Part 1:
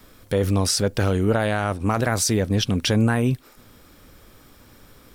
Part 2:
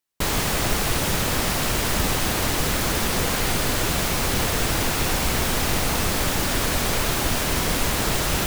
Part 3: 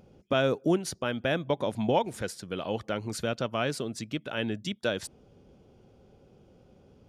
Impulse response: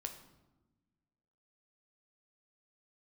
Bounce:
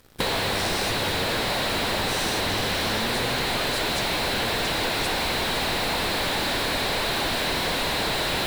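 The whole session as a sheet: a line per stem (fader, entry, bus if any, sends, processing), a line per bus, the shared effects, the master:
-13.5 dB, 0.00 s, bus A, no send, spectral dilation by 0.24 s
+1.5 dB, 0.00 s, no bus, no send, thirty-one-band EQ 1250 Hz -7 dB, 4000 Hz +10 dB, 6300 Hz -9 dB; overdrive pedal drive 26 dB, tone 1900 Hz, clips at -8.5 dBFS
+2.0 dB, 0.00 s, bus A, no send, bell 240 Hz -13 dB 2.3 oct
bus A: 0.0 dB, sample leveller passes 3; compressor, threshold -24 dBFS, peak gain reduction 7.5 dB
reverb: off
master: compressor 3:1, threshold -25 dBFS, peak gain reduction 8 dB

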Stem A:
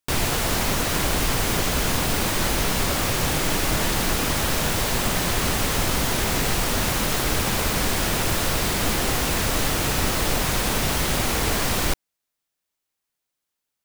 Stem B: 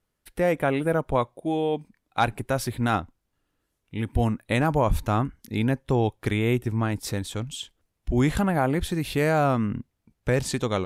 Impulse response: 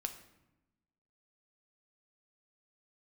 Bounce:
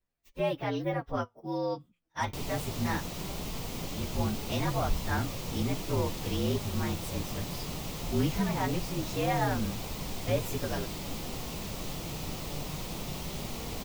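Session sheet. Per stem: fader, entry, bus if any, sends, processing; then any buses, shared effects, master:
-10.0 dB, 2.25 s, no send, fifteen-band EQ 160 Hz +6 dB, 1600 Hz -11 dB, 10000 Hz -6 dB
-1.0 dB, 0.00 s, no send, inharmonic rescaling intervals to 116%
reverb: off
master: flange 0.2 Hz, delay 0.9 ms, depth 6.2 ms, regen +81%

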